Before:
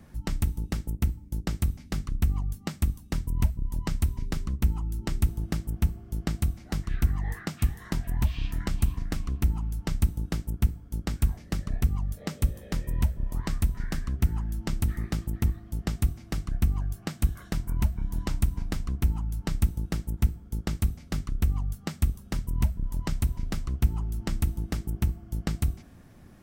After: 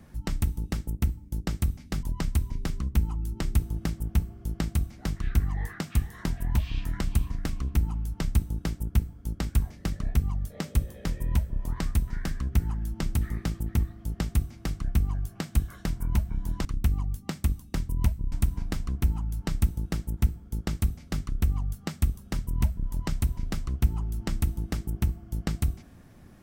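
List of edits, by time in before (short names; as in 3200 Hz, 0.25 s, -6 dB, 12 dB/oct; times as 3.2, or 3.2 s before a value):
2.03–3.7 move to 18.32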